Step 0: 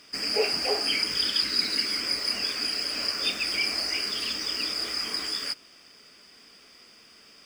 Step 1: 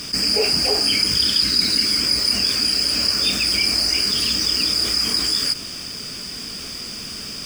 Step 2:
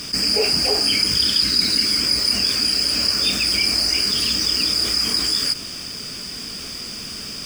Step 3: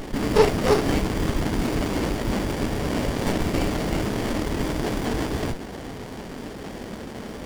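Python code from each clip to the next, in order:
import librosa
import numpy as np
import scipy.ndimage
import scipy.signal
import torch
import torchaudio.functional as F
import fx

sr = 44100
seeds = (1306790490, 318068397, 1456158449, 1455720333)

y1 = fx.bass_treble(x, sr, bass_db=15, treble_db=9)
y1 = fx.notch(y1, sr, hz=2000.0, q=24.0)
y1 = fx.env_flatten(y1, sr, amount_pct=50)
y2 = y1
y3 = fx.bandpass_edges(y2, sr, low_hz=270.0, high_hz=2600.0)
y3 = fx.running_max(y3, sr, window=33)
y3 = y3 * 10.0 ** (8.5 / 20.0)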